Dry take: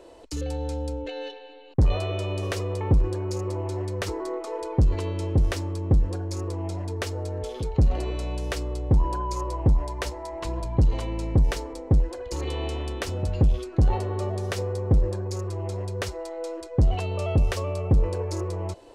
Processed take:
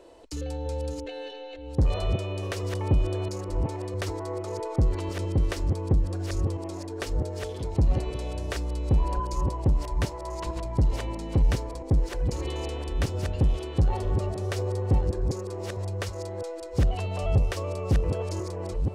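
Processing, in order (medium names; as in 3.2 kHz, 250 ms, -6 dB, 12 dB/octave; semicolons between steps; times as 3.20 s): chunks repeated in reverse 657 ms, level -5 dB; trim -3 dB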